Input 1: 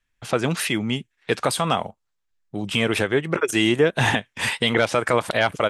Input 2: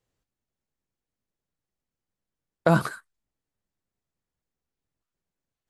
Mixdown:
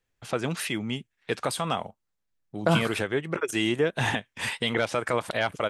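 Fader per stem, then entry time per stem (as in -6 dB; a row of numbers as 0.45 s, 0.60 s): -6.5 dB, -3.0 dB; 0.00 s, 0.00 s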